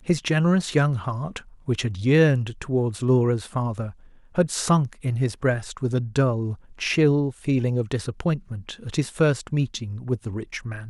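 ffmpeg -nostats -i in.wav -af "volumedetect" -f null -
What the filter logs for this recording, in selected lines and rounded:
mean_volume: -23.4 dB
max_volume: -6.9 dB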